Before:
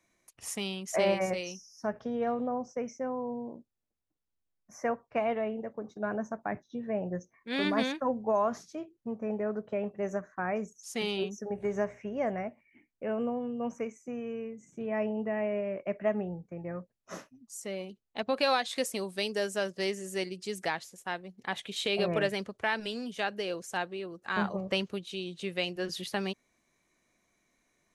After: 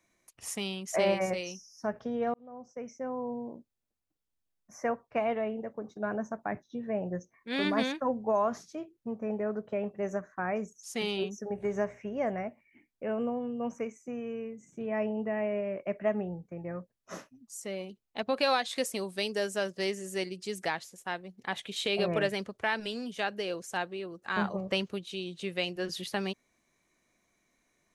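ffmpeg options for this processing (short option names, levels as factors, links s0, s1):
-filter_complex "[0:a]asplit=2[s0][s1];[s0]atrim=end=2.34,asetpts=PTS-STARTPTS,afade=t=out:st=2.336:d=0.004:c=hsin[s2];[s1]atrim=start=2.34,asetpts=PTS-STARTPTS,afade=t=in:d=0.9[s3];[s2][s3]concat=n=2:v=0:a=1"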